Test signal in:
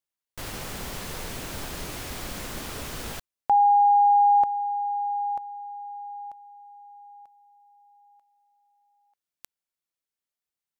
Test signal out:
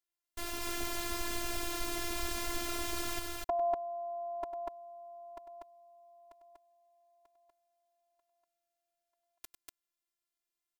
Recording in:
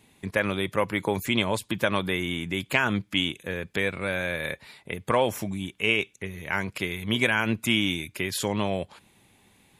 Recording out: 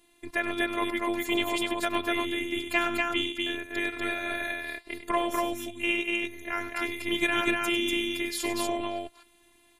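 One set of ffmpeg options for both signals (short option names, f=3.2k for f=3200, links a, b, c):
-af "aecho=1:1:99.13|242:0.282|0.794,afftfilt=real='hypot(re,im)*cos(PI*b)':imag='0':win_size=512:overlap=0.75"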